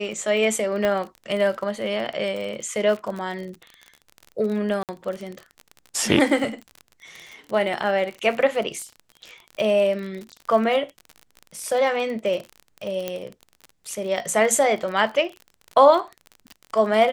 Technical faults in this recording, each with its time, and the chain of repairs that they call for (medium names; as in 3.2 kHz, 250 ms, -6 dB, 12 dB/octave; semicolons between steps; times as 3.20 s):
crackle 36 per s -29 dBFS
0.85 s: pop -11 dBFS
4.83–4.89 s: dropout 58 ms
13.08 s: pop -12 dBFS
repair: de-click; interpolate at 4.83 s, 58 ms